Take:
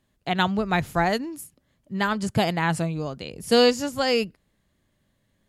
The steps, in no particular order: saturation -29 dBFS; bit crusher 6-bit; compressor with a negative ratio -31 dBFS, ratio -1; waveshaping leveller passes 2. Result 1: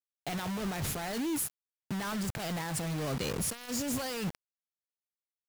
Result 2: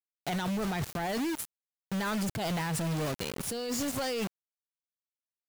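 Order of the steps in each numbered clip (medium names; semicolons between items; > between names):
waveshaping leveller > compressor with a negative ratio > bit crusher > saturation; bit crusher > compressor with a negative ratio > waveshaping leveller > saturation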